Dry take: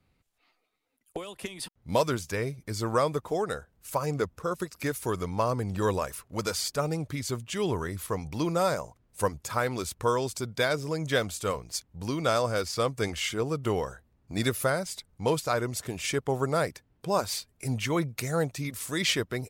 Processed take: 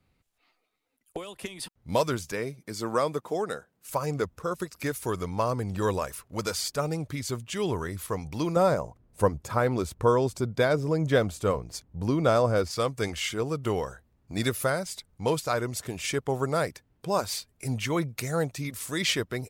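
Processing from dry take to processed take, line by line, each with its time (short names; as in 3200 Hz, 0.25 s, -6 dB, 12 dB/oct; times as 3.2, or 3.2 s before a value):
2.32–3.89 Chebyshev high-pass 190 Hz
8.56–12.71 tilt shelf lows +6 dB, about 1400 Hz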